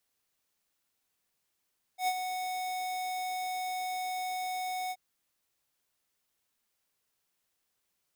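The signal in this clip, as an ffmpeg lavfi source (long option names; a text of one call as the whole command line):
ffmpeg -f lavfi -i "aevalsrc='0.0422*(2*lt(mod(739*t,1),0.5)-1)':duration=2.978:sample_rate=44100,afade=type=in:duration=0.096,afade=type=out:start_time=0.096:duration=0.053:silence=0.422,afade=type=out:start_time=2.93:duration=0.048" out.wav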